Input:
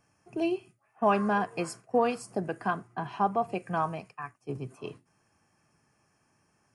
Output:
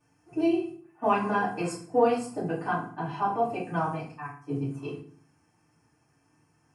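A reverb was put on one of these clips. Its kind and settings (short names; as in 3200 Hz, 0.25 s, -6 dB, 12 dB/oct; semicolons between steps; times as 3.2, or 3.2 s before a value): FDN reverb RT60 0.48 s, low-frequency decay 1.5×, high-frequency decay 0.8×, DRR -10 dB; gain -9.5 dB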